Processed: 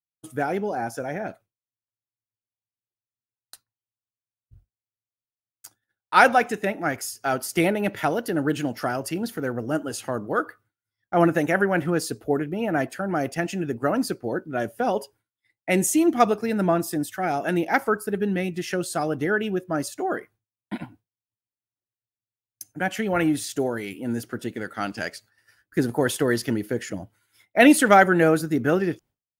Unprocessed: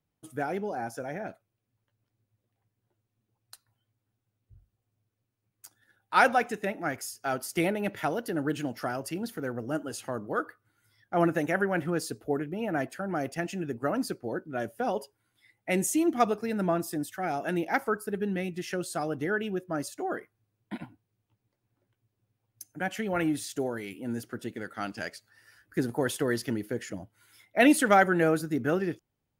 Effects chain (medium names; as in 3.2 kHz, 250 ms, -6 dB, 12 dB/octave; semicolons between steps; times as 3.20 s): expander -51 dBFS; trim +6 dB